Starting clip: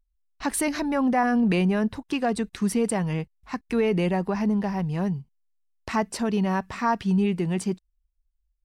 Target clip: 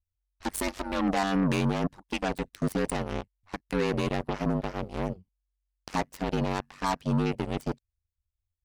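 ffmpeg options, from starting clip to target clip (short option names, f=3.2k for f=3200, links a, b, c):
-af "aeval=exprs='0.211*(cos(1*acos(clip(val(0)/0.211,-1,1)))-cos(1*PI/2))+0.0133*(cos(4*acos(clip(val(0)/0.211,-1,1)))-cos(4*PI/2))+0.0422*(cos(7*acos(clip(val(0)/0.211,-1,1)))-cos(7*PI/2))':c=same,aeval=exprs='val(0)*sin(2*PI*47*n/s)':c=same,asoftclip=type=tanh:threshold=-14.5dB,volume=-1dB"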